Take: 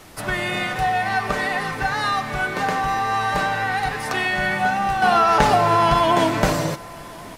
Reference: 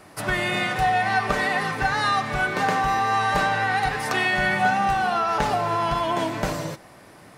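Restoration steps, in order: expander -28 dBFS, range -21 dB; inverse comb 1089 ms -23.5 dB; gain correction -7 dB, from 5.02 s

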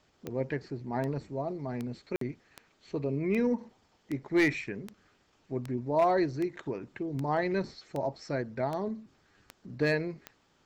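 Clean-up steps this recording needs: clip repair -18 dBFS; de-click; interpolate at 2.16 s, 53 ms

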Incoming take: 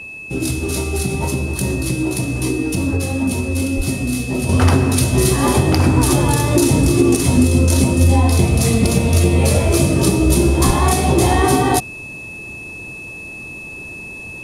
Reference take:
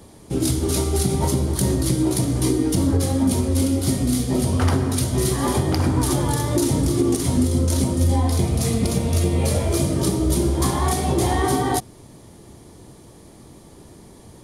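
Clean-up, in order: band-stop 2.6 kHz, Q 30; de-plosive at 3.76/10.66 s; gain correction -6 dB, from 4.49 s

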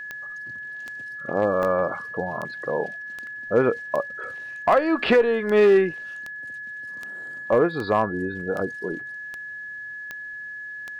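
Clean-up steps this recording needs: clip repair -10.5 dBFS; de-click; band-stop 1.7 kHz, Q 30; interpolate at 1.63/3.27 s, 1.3 ms

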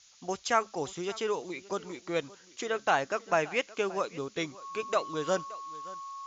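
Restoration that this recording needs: band-stop 1.1 kHz, Q 30; noise reduction 19 dB, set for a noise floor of -57 dBFS; inverse comb 573 ms -20 dB

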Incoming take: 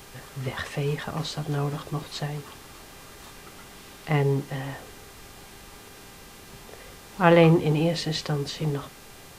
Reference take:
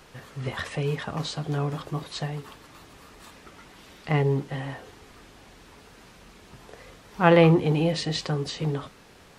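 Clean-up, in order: de-hum 399 Hz, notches 37; noise reduction 6 dB, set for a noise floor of -47 dBFS

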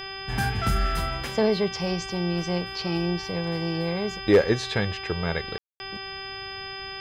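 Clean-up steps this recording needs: clip repair -10 dBFS; de-hum 387.3 Hz, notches 9; band-stop 5 kHz, Q 30; room tone fill 5.58–5.80 s

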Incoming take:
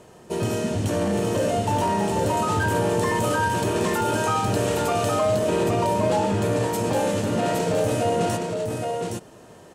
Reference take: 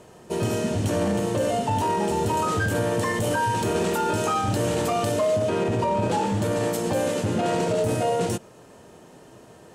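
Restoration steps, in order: clip repair -14 dBFS; inverse comb 816 ms -4 dB

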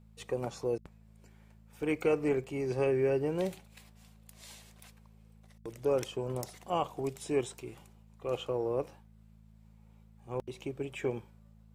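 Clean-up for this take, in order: de-hum 54.2 Hz, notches 4; interpolate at 1.83/2.44/5.30/9.86 s, 1.2 ms

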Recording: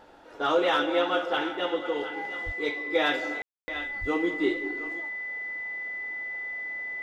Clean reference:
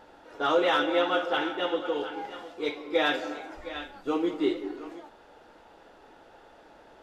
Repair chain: band-stop 2 kHz, Q 30; 2.45–2.57 s: high-pass 140 Hz 24 dB/octave; 4.00–4.12 s: high-pass 140 Hz 24 dB/octave; room tone fill 3.42–3.68 s

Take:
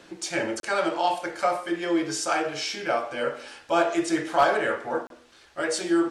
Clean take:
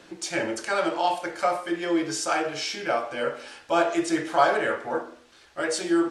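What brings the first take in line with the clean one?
clip repair -11 dBFS; interpolate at 0.60/5.07 s, 32 ms

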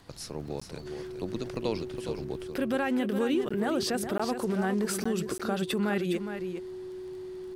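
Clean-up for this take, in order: de-click; band-stop 370 Hz, Q 30; interpolate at 0.60/3.49/4.18/5.04/5.38 s, 15 ms; inverse comb 412 ms -8.5 dB

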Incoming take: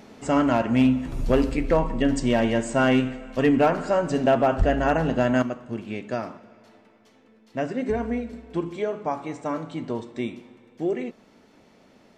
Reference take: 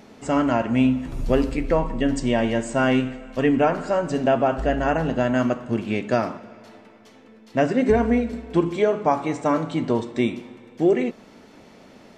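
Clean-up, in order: clip repair -12 dBFS; de-plosive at 4.58 s; trim 0 dB, from 5.42 s +7.5 dB

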